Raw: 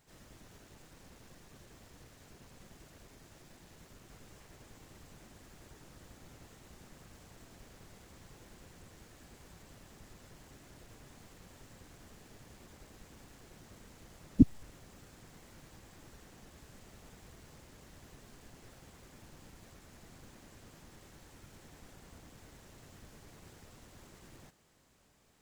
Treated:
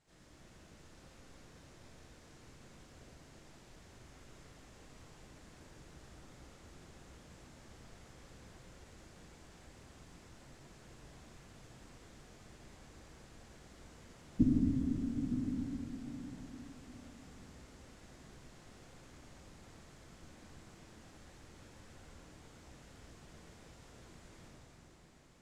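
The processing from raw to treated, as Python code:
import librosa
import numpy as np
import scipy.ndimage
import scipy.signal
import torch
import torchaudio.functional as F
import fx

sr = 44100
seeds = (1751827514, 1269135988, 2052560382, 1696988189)

y = scipy.signal.sosfilt(scipy.signal.butter(2, 8900.0, 'lowpass', fs=sr, output='sos'), x)
y = y + 10.0 ** (-10.5 / 20.0) * np.pad(y, (int(915 * sr / 1000.0), 0))[:len(y)]
y = fx.rev_plate(y, sr, seeds[0], rt60_s=4.9, hf_ratio=0.9, predelay_ms=0, drr_db=-5.0)
y = y * 10.0 ** (-7.0 / 20.0)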